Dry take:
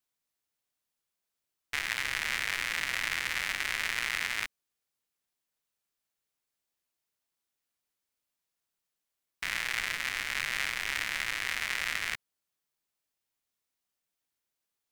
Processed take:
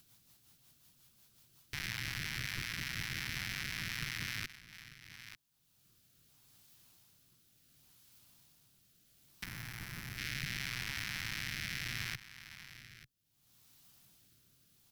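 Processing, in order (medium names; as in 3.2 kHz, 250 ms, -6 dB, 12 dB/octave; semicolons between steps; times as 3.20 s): in parallel at -12 dB: fuzz box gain 37 dB, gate -43 dBFS; on the sum: ten-band graphic EQ 125 Hz +11 dB, 500 Hz -10 dB, 1 kHz -3 dB, 2 kHz -8 dB, 8 kHz -5 dB; on a send: delay 892 ms -23 dB; on the sum: upward compressor, threshold -48 dBFS; rotary cabinet horn 5.5 Hz, later 0.7 Hz, at 4.30 s; peak limiter -29.5 dBFS, peak gain reduction 13.5 dB; 9.44–10.18 s: peaking EQ 3.5 kHz -10 dB 2.5 oct; trim +4.5 dB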